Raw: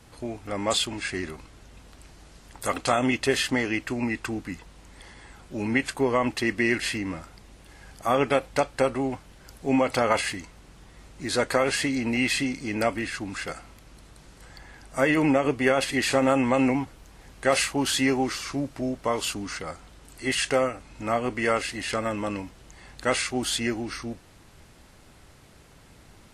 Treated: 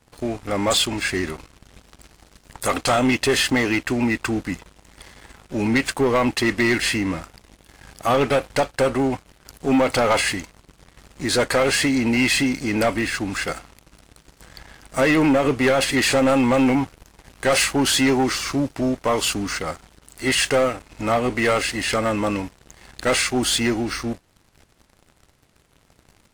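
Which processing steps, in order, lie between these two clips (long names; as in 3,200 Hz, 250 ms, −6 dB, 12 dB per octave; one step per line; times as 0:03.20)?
leveller curve on the samples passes 3
level −3.5 dB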